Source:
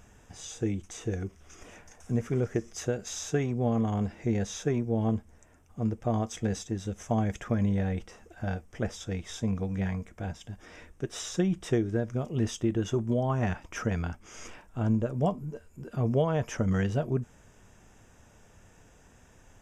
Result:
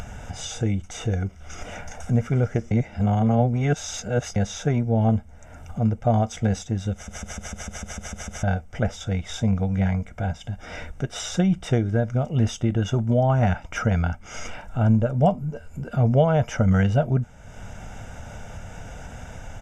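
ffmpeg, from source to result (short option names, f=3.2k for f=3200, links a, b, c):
-filter_complex "[0:a]asplit=13[a][b][c][d][e][f][g][h][i][j][k][l][m];[a]atrim=end=2.712[n];[b]atrim=start=2.708:end=4.362,asetpts=PTS-STARTPTS,areverse[o];[c]atrim=start=4.358:end=7.082[p];[d]atrim=start=6.928:end=7.082[q];[e]atrim=start=6.928:end=7.082[r];[f]atrim=start=6.928:end=7.082[s];[g]atrim=start=6.928:end=7.082[t];[h]atrim=start=6.928:end=7.082[u];[i]atrim=start=6.928:end=7.082[v];[j]atrim=start=6.928:end=7.082[w];[k]atrim=start=6.928:end=7.082[x];[l]atrim=start=6.928:end=7.082[y];[m]atrim=start=8.428[z];[n][o]acrossfade=d=0.004:c1=hsin:c2=hsin[aa];[aa][p]acrossfade=d=0.004:c1=hsin:c2=hsin[ab];[ab][q]acrossfade=d=0.004:c1=hsin:c2=hsin[ac];[ac][r]acrossfade=d=0.004:c1=hsin:c2=hsin[ad];[ad][s]acrossfade=d=0.004:c1=hsin:c2=hsin[ae];[ae][t]acrossfade=d=0.004:c1=hsin:c2=hsin[af];[af][u]acrossfade=d=0.004:c1=hsin:c2=hsin[ag];[ag][v]acrossfade=d=0.004:c1=hsin:c2=hsin[ah];[ah][w]acrossfade=d=0.004:c1=hsin:c2=hsin[ai];[ai][x]acrossfade=d=0.004:c1=hsin:c2=hsin[aj];[aj][y]acrossfade=d=0.004:c1=hsin:c2=hsin[ak];[ak][z]acrossfade=d=0.004:c1=hsin:c2=hsin,lowpass=f=4k:p=1,aecho=1:1:1.4:0.59,acompressor=mode=upward:threshold=-32dB:ratio=2.5,volume=6.5dB"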